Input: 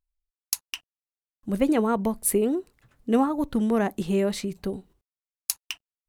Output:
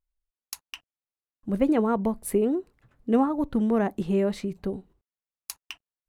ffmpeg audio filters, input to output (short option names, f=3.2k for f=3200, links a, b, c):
-af "highshelf=f=2.9k:g=-11.5"